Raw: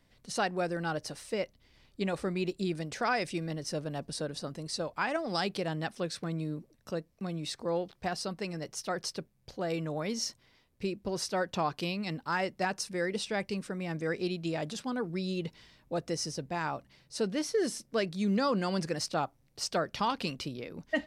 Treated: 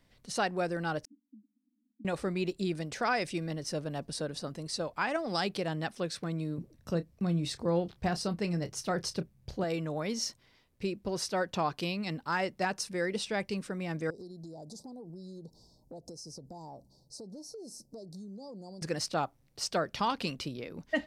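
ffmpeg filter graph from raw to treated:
ffmpeg -i in.wav -filter_complex "[0:a]asettb=1/sr,asplit=3[link_01][link_02][link_03];[link_01]atrim=end=1.054[link_04];[link_02]atrim=start=1.05:end=2.05,asetpts=PTS-STARTPTS,afade=type=in:duration=0.004:curve=qsin,afade=type=out:start_time=0.996:duration=0.004:curve=qsin,acompressor=threshold=-48dB:ratio=2.5:attack=3.2:release=140:knee=1:detection=peak,asuperpass=centerf=250:order=12:qfactor=2.7[link_05];[link_03]atrim=start=2.046[link_06];[link_04][link_05]acrossfade=duration=0.004:curve1=hsin:curve2=qsin[link_07];[link_07][link_06]acrossfade=duration=0.004:curve1=qsin:curve2=hsin,asettb=1/sr,asplit=3[link_08][link_09][link_10];[link_08]atrim=end=6.584[link_11];[link_09]atrim=start=6.58:end=9.64,asetpts=PTS-STARTPTS,afade=type=in:duration=0.004:curve=qsin,afade=type=out:start_time=3.056:duration=0.004:curve=qsin,equalizer=frequency=66:width=0.34:gain=11.5,asplit=2[link_12][link_13];[link_13]adelay=29,volume=-13dB[link_14];[link_12][link_14]amix=inputs=2:normalize=0,atrim=end_sample=134946[link_15];[link_10]atrim=start=9.636[link_16];[link_11][link_15]acrossfade=duration=0.004:curve1=hsin:curve2=qsin[link_17];[link_17][link_16]acrossfade=duration=0.004:curve1=qsin:curve2=hsin,asettb=1/sr,asplit=3[link_18][link_19][link_20];[link_18]atrim=end=14.104[link_21];[link_19]atrim=start=14.1:end=18.82,asetpts=PTS-STARTPTS,afade=type=in:duration=0.004:curve=qsin,afade=type=out:start_time=4.716:duration=0.004:curve=qsin,asuperstop=centerf=2000:order=12:qfactor=0.58,acompressor=threshold=-42dB:ratio=16:attack=3.2:release=140:knee=1:detection=peak[link_22];[link_20]atrim=start=18.816[link_23];[link_21][link_22]acrossfade=duration=0.004:curve1=hsin:curve2=qsin[link_24];[link_24][link_23]acrossfade=duration=0.004:curve1=qsin:curve2=hsin" out.wav

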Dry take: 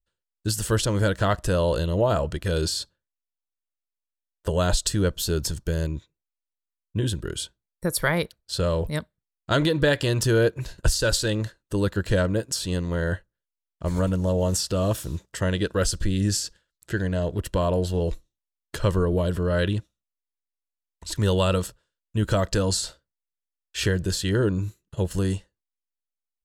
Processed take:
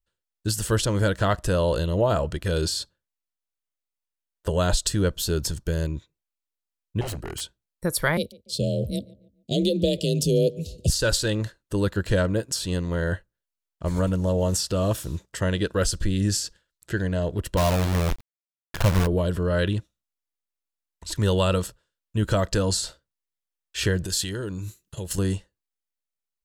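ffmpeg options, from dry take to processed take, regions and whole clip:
ffmpeg -i in.wav -filter_complex "[0:a]asettb=1/sr,asplit=3[link_01][link_02][link_03];[link_01]atrim=end=7.014[link_04];[link_02]atrim=start=7.01:end=7.41,asetpts=PTS-STARTPTS,afade=type=in:duration=0.004:curve=qsin,afade=type=out:start_time=0.396:duration=0.004:curve=qsin,aeval=exprs='0.0501*(abs(mod(val(0)/0.0501+3,4)-2)-1)':channel_layout=same,asuperstop=centerf=3500:order=4:qfactor=7[link_05];[link_03]atrim=start=7.406[link_06];[link_04][link_05]acrossfade=duration=0.004:curve1=hsin:curve2=qsin[link_07];[link_07][link_06]acrossfade=duration=0.004:curve1=qsin:curve2=hsin,asettb=1/sr,asplit=3[link_08][link_09][link_10];[link_08]atrim=end=8.174[link_11];[link_09]atrim=start=8.17:end=10.9,asetpts=PTS-STARTPTS,afade=type=in:duration=0.004:curve=qsin,afade=type=out:start_time=2.726:duration=0.004:curve=qsin,afreqshift=35,asuperstop=centerf=1300:order=8:qfactor=0.56,asplit=2[link_12][link_13];[link_13]adelay=144,lowpass=frequency=2000:poles=1,volume=-21.5dB,asplit=2[link_14][link_15];[link_15]adelay=144,lowpass=frequency=2000:poles=1,volume=0.42,asplit=2[link_16][link_17];[link_17]adelay=144,lowpass=frequency=2000:poles=1,volume=0.42[link_18];[link_12][link_14][link_16][link_18]amix=inputs=4:normalize=0,atrim=end_sample=120393[link_19];[link_10]atrim=start=10.896[link_20];[link_11][link_19]acrossfade=duration=0.004:curve1=hsin:curve2=qsin[link_21];[link_21][link_20]acrossfade=duration=0.004:curve1=qsin:curve2=hsin,asettb=1/sr,asplit=3[link_22][link_23][link_24];[link_22]atrim=end=17.574[link_25];[link_23]atrim=start=17.57:end=19.07,asetpts=PTS-STARTPTS,afade=type=in:duration=0.004:curve=qsin,afade=type=out:start_time=1.496:duration=0.004:curve=qsin,lowpass=2700,aecho=1:1:1.2:0.61,atrim=end_sample=66150,acrusher=bits=5:dc=4:mix=0:aa=0.000001[link_26];[link_24]atrim=start=19.066[link_27];[link_25][link_26]acrossfade=duration=0.004:curve1=hsin:curve2=qsin[link_28];[link_28][link_27]acrossfade=duration=0.004:curve1=qsin:curve2=hsin,asettb=1/sr,asplit=3[link_29][link_30][link_31];[link_29]atrim=end=24.054[link_32];[link_30]atrim=start=24.05:end=25.18,asetpts=PTS-STARTPTS,afade=type=in:duration=0.004:curve=qsin,afade=type=out:start_time=1.126:duration=0.004:curve=qsin,acompressor=threshold=-29dB:ratio=4:attack=3.2:release=140:knee=1:detection=peak,highshelf=frequency=2900:gain=11[link_33];[link_31]atrim=start=25.176[link_34];[link_32][link_33]acrossfade=duration=0.004:curve1=hsin:curve2=qsin[link_35];[link_35][link_34]acrossfade=duration=0.004:curve1=qsin:curve2=hsin" out.wav

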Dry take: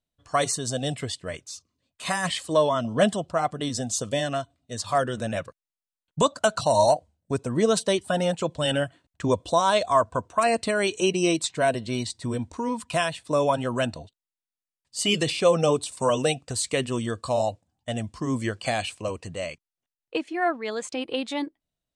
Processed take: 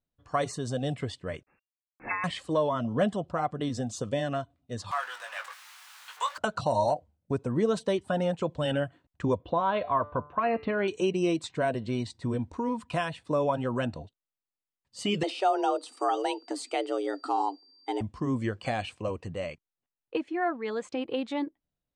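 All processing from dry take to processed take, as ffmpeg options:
ffmpeg -i in.wav -filter_complex "[0:a]asettb=1/sr,asplit=3[link_01][link_02][link_03];[link_01]atrim=end=1.434[link_04];[link_02]atrim=start=1.43:end=2.24,asetpts=PTS-STARTPTS,afade=type=in:duration=0.004:curve=qsin,afade=type=out:start_time=0.806:duration=0.004:curve=qsin,aeval=exprs='sgn(val(0))*max(abs(val(0))-0.00211,0)':channel_layout=same,lowpass=frequency=2400:width_type=q:width=0.5098,lowpass=frequency=2400:width_type=q:width=0.6013,lowpass=frequency=2400:width_type=q:width=0.9,lowpass=frequency=2400:width_type=q:width=2.563,afreqshift=-2800[link_05];[link_03]atrim=start=2.236[link_06];[link_04][link_05]acrossfade=duration=0.004:curve1=hsin:curve2=qsin[link_07];[link_07][link_06]acrossfade=duration=0.004:curve1=qsin:curve2=hsin,asettb=1/sr,asplit=3[link_08][link_09][link_10];[link_08]atrim=end=4.914[link_11];[link_09]atrim=start=4.91:end=6.38,asetpts=PTS-STARTPTS,afade=type=in:duration=0.004:curve=qsin,afade=type=out:start_time=1.466:duration=0.004:curve=qsin,aeval=exprs='val(0)+0.5*0.0355*sgn(val(0))':channel_layout=same,highpass=frequency=1000:width=0.5412,highpass=frequency=1000:width=1.3066,asplit=2[link_12][link_13];[link_13]adelay=20,volume=-6dB[link_14];[link_12][link_14]amix=inputs=2:normalize=0,atrim=end_sample=64827[link_15];[link_10]atrim=start=6.376[link_16];[link_11][link_15]acrossfade=duration=0.004:curve1=hsin:curve2=qsin[link_17];[link_17][link_16]acrossfade=duration=0.004:curve1=qsin:curve2=hsin,asettb=1/sr,asplit=3[link_18][link_19][link_20];[link_18]atrim=end=9.384[link_21];[link_19]atrim=start=9.38:end=10.88,asetpts=PTS-STARTPTS,afade=type=in:duration=0.004:curve=qsin,afade=type=out:start_time=1.496:duration=0.004:curve=qsin,lowpass=frequency=3200:width=0.5412,lowpass=frequency=3200:width=1.3066,bandreject=frequency=147:width_type=h:width=4,bandreject=frequency=294:width_type=h:width=4,bandreject=frequency=441:width_type=h:width=4,bandreject=frequency=588:width_type=h:width=4,bandreject=frequency=735:width_type=h:width=4,bandreject=frequency=882:width_type=h:width=4,bandreject=frequency=1029:width_type=h:width=4,bandreject=frequency=1176:width_type=h:width=4,bandreject=frequency=1323:width_type=h:width=4,bandreject=frequency=1470:width_type=h:width=4,bandreject=frequency=1617:width_type=h:width=4,bandreject=frequency=1764:width_type=h:width=4,bandreject=frequency=1911:width_type=h:width=4,bandreject=frequency=2058:width_type=h:width=4,bandreject=frequency=2205:width_type=h:width=4,bandreject=frequency=2352:width_type=h:width=4,bandreject=frequency=2499:width_type=h:width=4,bandreject=frequency=2646:width_type=h:width=4,bandreject=frequency=2793:width_type=h:width=4,bandreject=frequency=2940:width_type=h:width=4,bandreject=frequency=3087:width_type=h:width=4,bandreject=frequency=3234:width_type=h:width=4,bandreject=frequency=3381:width_type=h:width=4,bandreject=frequency=3528:width_type=h:width=4,bandreject=frequency=3675:width_type=h:width=4,bandreject=frequency=3822:width_type=h:width=4,bandreject=frequency=3969:width_type=h:width=4,bandreject=frequency=4116:width_type=h:width=4,bandreject=frequency=4263:width_type=h:width=4,bandreject=frequency=4410:width_type=h:width=4[link_22];[link_20]atrim=start=10.876[link_23];[link_21][link_22]acrossfade=duration=0.004:curve1=hsin:curve2=qsin[link_24];[link_24][link_23]acrossfade=duration=0.004:curve1=qsin:curve2=hsin,asettb=1/sr,asplit=3[link_25][link_26][link_27];[link_25]atrim=end=15.234[link_28];[link_26]atrim=start=15.23:end=18.01,asetpts=PTS-STARTPTS,afade=type=in:duration=0.004:curve=qsin,afade=type=out:start_time=2.776:duration=0.004:curve=qsin,aeval=exprs='val(0)+0.00447*sin(2*PI*4500*n/s)':channel_layout=same,afreqshift=190[link_29];[link_27]atrim=start=18.006[link_30];[link_28][link_29]acrossfade=duration=0.004:curve1=hsin:curve2=qsin[link_31];[link_31][link_30]acrossfade=duration=0.004:curve1=qsin:curve2=hsin,lowpass=frequency=1500:poles=1,bandreject=frequency=650:width=12,acompressor=threshold=-28dB:ratio=1.5" out.wav

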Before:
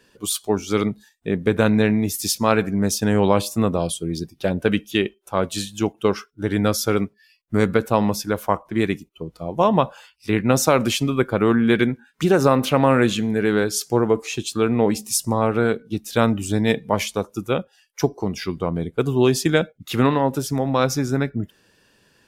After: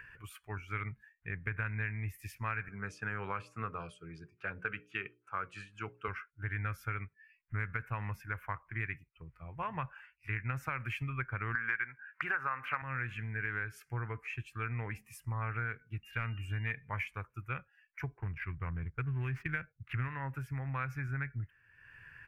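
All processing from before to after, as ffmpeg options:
ffmpeg -i in.wav -filter_complex "[0:a]asettb=1/sr,asplit=3[link_01][link_02][link_03];[link_01]atrim=end=2.684[link_04];[link_02]atrim=start=2.68:end=6.08,asetpts=PTS-STARTPTS,afade=type=in:duration=0.004:curve=qsin,afade=type=out:start_time=3.396:duration=0.004:curve=qsin,highpass=160,equalizer=frequency=200:width_type=q:width=4:gain=3,equalizer=frequency=440:width_type=q:width=4:gain=8,equalizer=frequency=1300:width_type=q:width=4:gain=9,equalizer=frequency=1900:width_type=q:width=4:gain=-6,equalizer=frequency=4600:width_type=q:width=4:gain=7,equalizer=frequency=6500:width_type=q:width=4:gain=3,lowpass=frequency=8900:width=0.5412,lowpass=frequency=8900:width=1.3066,bandreject=frequency=60:width_type=h:width=6,bandreject=frequency=120:width_type=h:width=6,bandreject=frequency=180:width_type=h:width=6,bandreject=frequency=240:width_type=h:width=6,bandreject=frequency=300:width_type=h:width=6,bandreject=frequency=360:width_type=h:width=6,bandreject=frequency=420:width_type=h:width=6,bandreject=frequency=480:width_type=h:width=6,bandreject=frequency=540:width_type=h:width=6,bandreject=frequency=600:width_type=h:width=6[link_05];[link_03]atrim=start=6.076[link_06];[link_04][link_05]acrossfade=duration=0.004:curve1=hsin:curve2=qsin[link_07];[link_07][link_06]acrossfade=duration=0.004:curve1=qsin:curve2=hsin,asettb=1/sr,asplit=3[link_08][link_09][link_10];[link_08]atrim=end=11.554[link_11];[link_09]atrim=start=11.55:end=12.82,asetpts=PTS-STARTPTS,afade=type=in:duration=0.004:curve=qsin,afade=type=out:start_time=1.266:duration=0.004:curve=qsin,highpass=frequency=280:poles=1,equalizer=frequency=1200:width_type=o:width=2.4:gain=15[link_12];[link_10]atrim=start=12.816[link_13];[link_11][link_12]acrossfade=duration=0.004:curve1=hsin:curve2=qsin[link_14];[link_14][link_13]acrossfade=duration=0.004:curve1=qsin:curve2=hsin,asettb=1/sr,asplit=3[link_15][link_16][link_17];[link_15]atrim=end=16.034[link_18];[link_16]atrim=start=16.03:end=16.71,asetpts=PTS-STARTPTS,afade=type=in:duration=0.004:curve=qsin,afade=type=out:start_time=0.676:duration=0.004:curve=qsin,asoftclip=type=hard:threshold=-9dB,aeval=exprs='val(0)+0.0112*sin(2*PI*2800*n/s)':channel_layout=same[link_19];[link_17]atrim=start=16.706[link_20];[link_18][link_19]acrossfade=duration=0.004:curve1=hsin:curve2=qsin[link_21];[link_21][link_20]acrossfade=duration=0.004:curve1=qsin:curve2=hsin,asettb=1/sr,asplit=3[link_22][link_23][link_24];[link_22]atrim=end=18.174[link_25];[link_23]atrim=start=18.17:end=20.08,asetpts=PTS-STARTPTS,afade=type=in:duration=0.004:curve=qsin,afade=type=out:start_time=1.906:duration=0.004:curve=qsin,lowshelf=frequency=170:gain=6.5,adynamicsmooth=sensitivity=4.5:basefreq=1100[link_26];[link_24]atrim=start=20.076[link_27];[link_25][link_26]acrossfade=duration=0.004:curve1=hsin:curve2=qsin[link_28];[link_28][link_27]acrossfade=duration=0.004:curve1=qsin:curve2=hsin,acompressor=mode=upward:threshold=-32dB:ratio=2.5,firequalizer=gain_entry='entry(130,0);entry(190,-20);entry(600,-20);entry(1000,-8);entry(1600,5);entry(2400,2);entry(3600,-27);entry(6600,-27);entry(13000,-19)':delay=0.05:min_phase=1,acompressor=threshold=-25dB:ratio=6,volume=-7.5dB" out.wav

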